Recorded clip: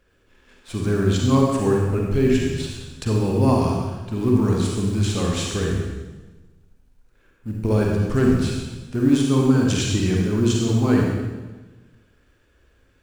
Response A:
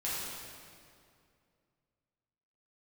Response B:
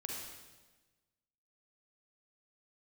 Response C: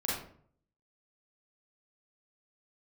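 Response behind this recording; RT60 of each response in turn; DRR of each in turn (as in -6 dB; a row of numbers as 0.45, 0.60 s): B; 2.4, 1.2, 0.55 s; -9.0, -1.5, -6.5 dB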